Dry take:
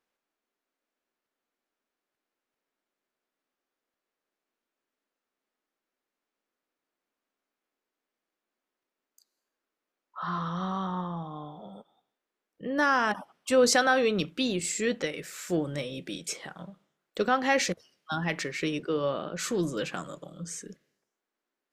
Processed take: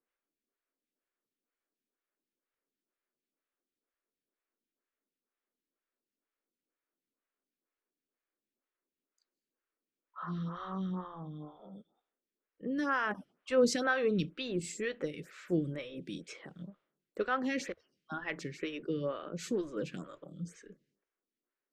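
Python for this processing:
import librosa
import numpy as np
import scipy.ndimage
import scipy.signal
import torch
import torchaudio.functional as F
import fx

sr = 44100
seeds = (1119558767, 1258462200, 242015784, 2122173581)

y = fx.lowpass(x, sr, hz=2000.0, slope=6)
y = fx.peak_eq(y, sr, hz=790.0, db=-9.5, octaves=1.1)
y = fx.stagger_phaser(y, sr, hz=2.1)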